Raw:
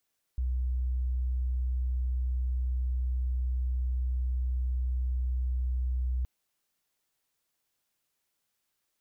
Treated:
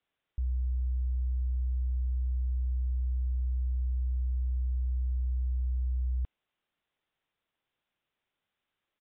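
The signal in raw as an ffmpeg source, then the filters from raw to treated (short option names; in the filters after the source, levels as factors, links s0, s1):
-f lavfi -i "aevalsrc='0.0473*sin(2*PI*62.7*t)':d=5.87:s=44100"
-af "aresample=8000,aresample=44100"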